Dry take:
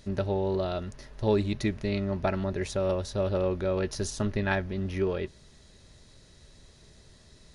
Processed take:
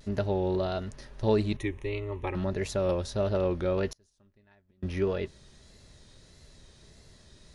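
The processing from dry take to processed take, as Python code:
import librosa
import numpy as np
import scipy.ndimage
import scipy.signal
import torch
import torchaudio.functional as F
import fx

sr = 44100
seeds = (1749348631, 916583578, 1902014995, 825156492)

y = fx.fixed_phaser(x, sr, hz=990.0, stages=8, at=(1.57, 2.35))
y = fx.gate_flip(y, sr, shuts_db=-28.0, range_db=-35, at=(3.88, 4.83))
y = fx.vibrato(y, sr, rate_hz=1.6, depth_cents=72.0)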